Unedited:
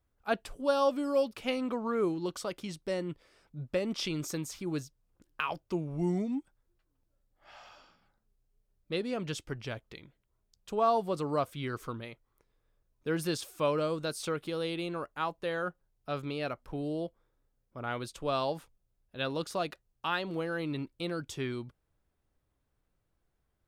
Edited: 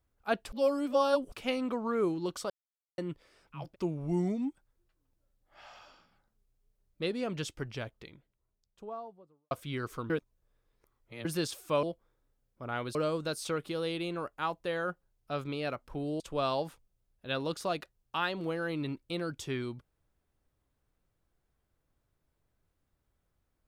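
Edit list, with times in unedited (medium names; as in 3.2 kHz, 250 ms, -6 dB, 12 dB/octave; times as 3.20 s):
0.52–1.32 s: reverse
2.50–2.98 s: mute
3.64–5.54 s: delete, crossfade 0.24 s
9.55–11.41 s: studio fade out
12.00–13.15 s: reverse
16.98–18.10 s: move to 13.73 s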